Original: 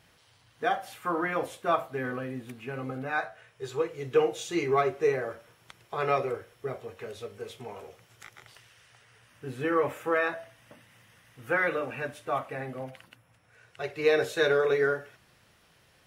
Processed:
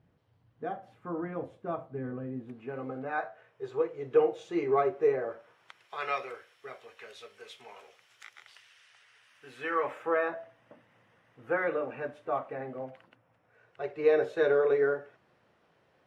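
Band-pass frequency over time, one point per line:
band-pass, Q 0.61
2.17 s 160 Hz
2.78 s 520 Hz
5.27 s 520 Hz
5.95 s 2700 Hz
9.51 s 2700 Hz
10.29 s 500 Hz

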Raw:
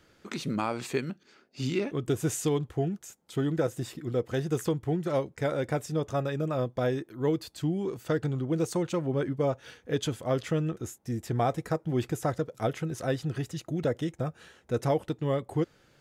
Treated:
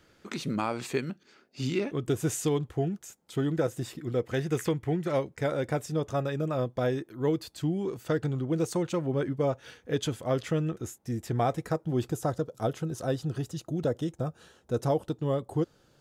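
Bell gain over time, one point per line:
bell 2100 Hz 0.7 oct
3.99 s 0 dB
4.66 s +9.5 dB
5.51 s -0.5 dB
11.65 s -0.5 dB
12.07 s -10 dB

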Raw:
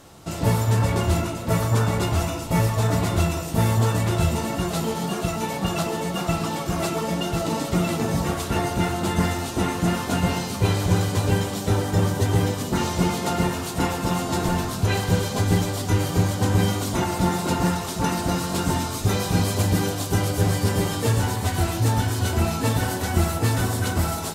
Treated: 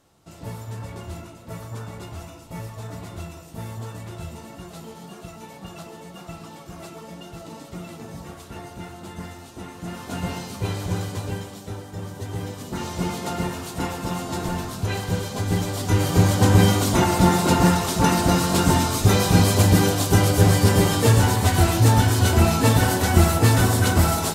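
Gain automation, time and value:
9.73 s -14 dB
10.22 s -6 dB
11.05 s -6 dB
11.89 s -14 dB
13.1 s -4 dB
15.41 s -4 dB
16.33 s +5 dB

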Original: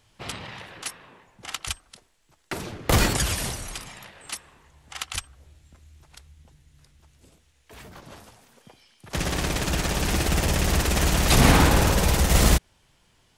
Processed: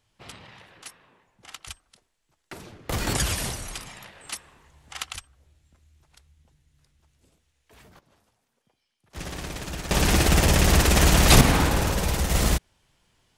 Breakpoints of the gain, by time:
-9 dB
from 3.07 s -0.5 dB
from 5.13 s -8 dB
from 7.99 s -19 dB
from 9.16 s -8.5 dB
from 9.91 s +4 dB
from 11.41 s -4 dB

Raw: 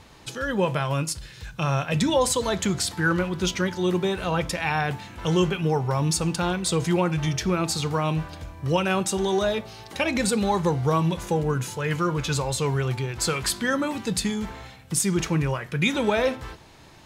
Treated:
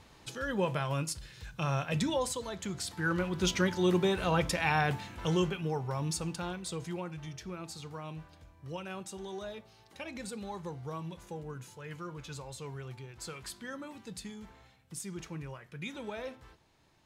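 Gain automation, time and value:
1.96 s -7.5 dB
2.53 s -15 dB
3.54 s -3.5 dB
5.01 s -3.5 dB
5.64 s -10.5 dB
6.16 s -10.5 dB
7.24 s -18 dB

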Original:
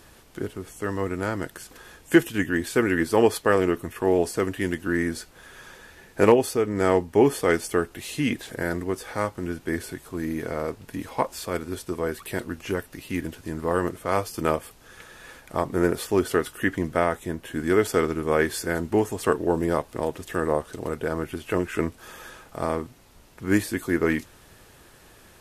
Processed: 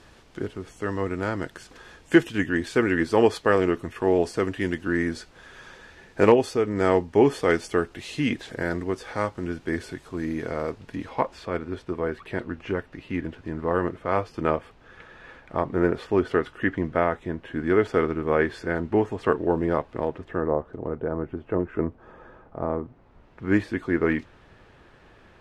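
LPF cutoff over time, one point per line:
10.7 s 5600 Hz
11.54 s 2600 Hz
20.01 s 2600 Hz
20.52 s 1000 Hz
22.83 s 1000 Hz
23.49 s 2700 Hz

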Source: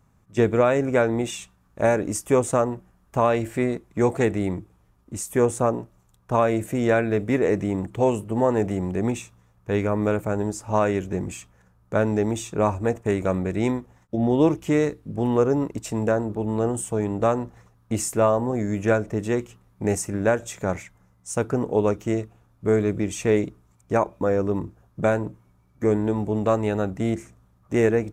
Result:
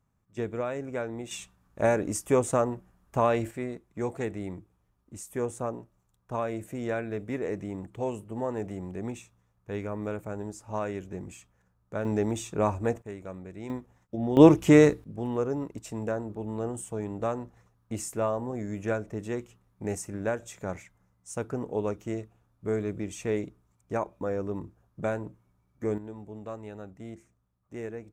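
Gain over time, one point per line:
-13 dB
from 1.31 s -4 dB
from 3.51 s -11 dB
from 12.05 s -4.5 dB
from 13.02 s -17 dB
from 13.7 s -8 dB
from 14.37 s +4 dB
from 15.04 s -9 dB
from 25.98 s -18 dB

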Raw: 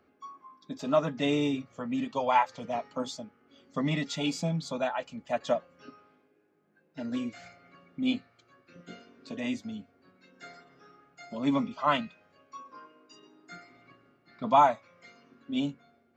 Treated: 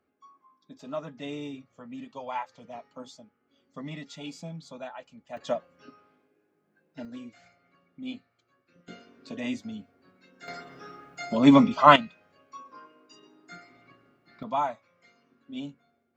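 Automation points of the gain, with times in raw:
-9.5 dB
from 5.37 s -1.5 dB
from 7.05 s -9 dB
from 8.88 s +0.5 dB
from 10.48 s +11 dB
from 11.96 s +0.5 dB
from 14.43 s -7 dB

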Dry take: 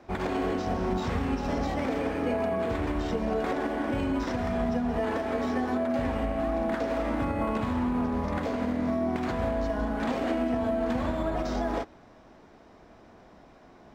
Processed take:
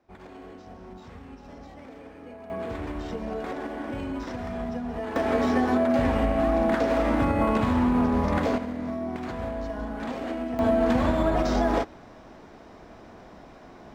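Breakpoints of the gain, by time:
-15.5 dB
from 2.5 s -4 dB
from 5.16 s +5.5 dB
from 8.58 s -3.5 dB
from 10.59 s +6 dB

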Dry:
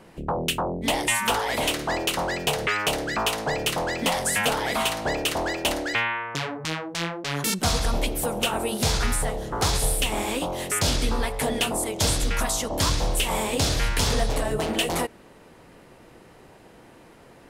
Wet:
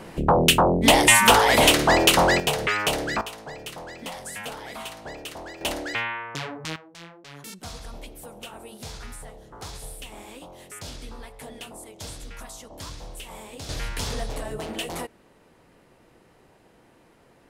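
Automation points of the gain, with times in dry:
+8.5 dB
from 2.4 s +0.5 dB
from 3.21 s -12 dB
from 5.61 s -3.5 dB
from 6.76 s -15.5 dB
from 13.69 s -7 dB

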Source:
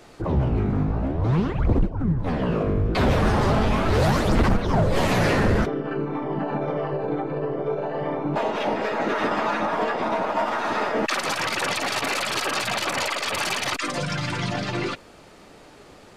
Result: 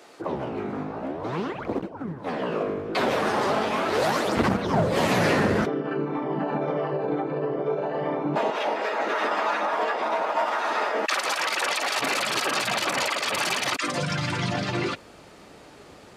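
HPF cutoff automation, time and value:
330 Hz
from 4.37 s 150 Hz
from 8.5 s 450 Hz
from 11.99 s 130 Hz
from 13.87 s 46 Hz

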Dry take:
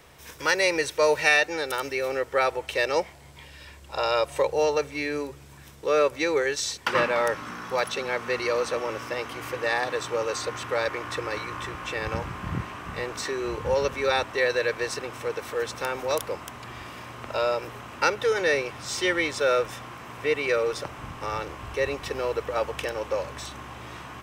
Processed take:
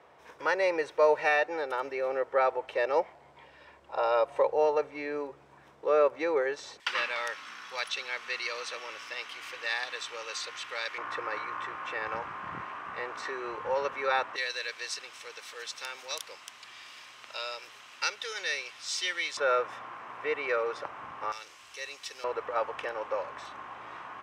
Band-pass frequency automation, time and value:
band-pass, Q 0.99
760 Hz
from 6.8 s 3400 Hz
from 10.98 s 1200 Hz
from 14.36 s 4400 Hz
from 19.37 s 1100 Hz
from 21.32 s 5700 Hz
from 22.24 s 1100 Hz

